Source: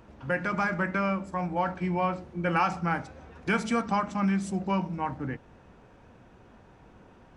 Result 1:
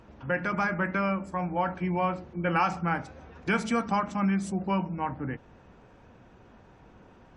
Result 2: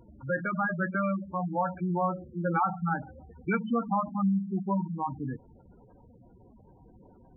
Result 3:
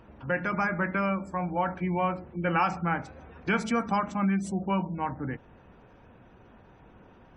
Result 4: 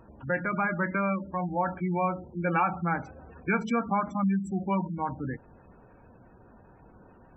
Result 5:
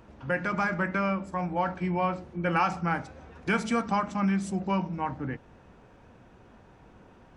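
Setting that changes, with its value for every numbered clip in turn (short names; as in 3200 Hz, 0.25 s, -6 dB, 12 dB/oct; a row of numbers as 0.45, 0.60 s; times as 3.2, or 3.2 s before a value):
spectral gate, under each frame's peak: -45, -10, -35, -20, -60 dB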